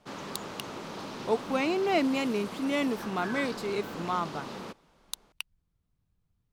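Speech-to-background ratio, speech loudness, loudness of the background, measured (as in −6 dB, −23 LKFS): 9.0 dB, −30.5 LKFS, −39.5 LKFS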